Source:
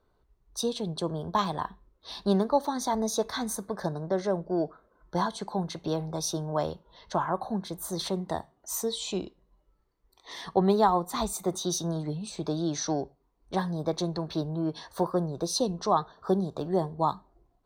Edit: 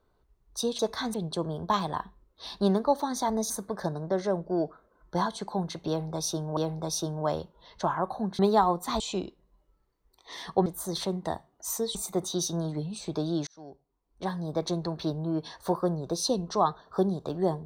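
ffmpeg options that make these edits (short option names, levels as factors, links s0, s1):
-filter_complex "[0:a]asplit=10[s0][s1][s2][s3][s4][s5][s6][s7][s8][s9];[s0]atrim=end=0.792[s10];[s1]atrim=start=3.148:end=3.502[s11];[s2]atrim=start=0.788:end=3.152[s12];[s3]atrim=start=3.498:end=6.572[s13];[s4]atrim=start=5.878:end=7.702[s14];[s5]atrim=start=10.648:end=11.262[s15];[s6]atrim=start=8.988:end=10.652[s16];[s7]atrim=start=7.698:end=8.992[s17];[s8]atrim=start=11.258:end=12.78,asetpts=PTS-STARTPTS,afade=t=out:st=1.518:d=0.004:c=hsin[s18];[s9]atrim=start=12.78,asetpts=PTS-STARTPTS,afade=t=in:d=1.19[s19];[s10][s11]acrossfade=d=0.004:c1=hsin:c2=hsin[s20];[s20][s12]acrossfade=d=0.004:c1=hsin:c2=hsin[s21];[s21][s13]acrossfade=d=0.004:c1=hsin:c2=hsin[s22];[s22][s14]acrossfade=d=0.004:c1=hsin:c2=hsin[s23];[s23][s15]acrossfade=d=0.004:c1=hsin:c2=hsin[s24];[s24][s16]acrossfade=d=0.004:c1=hsin:c2=hsin[s25];[s25][s17]acrossfade=d=0.004:c1=hsin:c2=hsin[s26];[s18][s19]concat=n=2:v=0:a=1[s27];[s26][s27]acrossfade=d=0.004:c1=hsin:c2=hsin"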